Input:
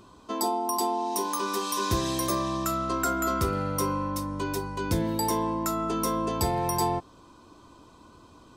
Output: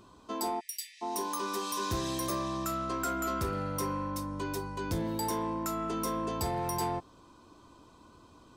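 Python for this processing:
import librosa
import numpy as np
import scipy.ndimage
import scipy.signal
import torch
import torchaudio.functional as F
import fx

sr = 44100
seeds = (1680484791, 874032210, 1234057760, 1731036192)

y = 10.0 ** (-21.0 / 20.0) * np.tanh(x / 10.0 ** (-21.0 / 20.0))
y = fx.brickwall_highpass(y, sr, low_hz=1700.0, at=(0.59, 1.01), fade=0.02)
y = y * 10.0 ** (-4.0 / 20.0)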